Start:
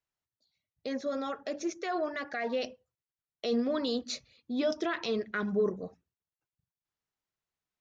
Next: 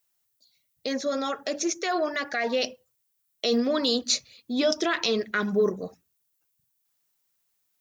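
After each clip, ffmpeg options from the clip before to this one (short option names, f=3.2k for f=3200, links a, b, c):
-af "highpass=f=110:p=1,aemphasis=mode=production:type=75kf,volume=5.5dB"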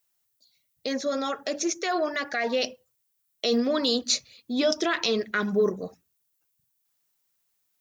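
-af anull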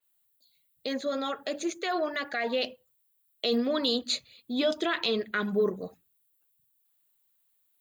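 -af "aexciter=amount=1.1:drive=1:freq=3k,adynamicequalizer=threshold=0.00794:dfrequency=5500:dqfactor=0.7:tfrequency=5500:tqfactor=0.7:attack=5:release=100:ratio=0.375:range=2:mode=cutabove:tftype=highshelf,volume=-3dB"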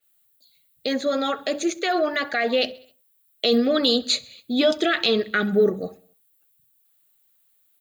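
-af "asuperstop=centerf=1000:order=20:qfactor=5.8,aecho=1:1:66|132|198|264:0.0708|0.0418|0.0246|0.0145,volume=7.5dB"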